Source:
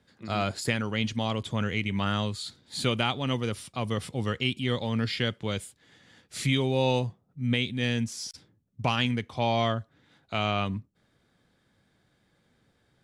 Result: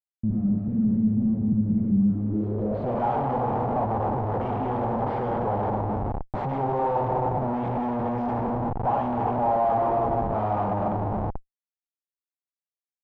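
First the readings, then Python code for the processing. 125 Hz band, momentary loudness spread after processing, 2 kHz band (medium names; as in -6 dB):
+2.0 dB, 5 LU, -11.0 dB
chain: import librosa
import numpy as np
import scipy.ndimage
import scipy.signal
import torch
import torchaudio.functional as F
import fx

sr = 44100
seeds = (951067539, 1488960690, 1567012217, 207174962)

y = fx.rev_schroeder(x, sr, rt60_s=2.5, comb_ms=29, drr_db=1.0)
y = fx.schmitt(y, sr, flips_db=-35.5)
y = fx.filter_sweep_lowpass(y, sr, from_hz=210.0, to_hz=830.0, start_s=2.11, end_s=3.03, q=3.9)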